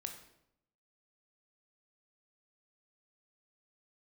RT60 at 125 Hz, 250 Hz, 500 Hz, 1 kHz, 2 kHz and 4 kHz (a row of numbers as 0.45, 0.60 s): 0.95, 0.90, 0.80, 0.75, 0.65, 0.60 s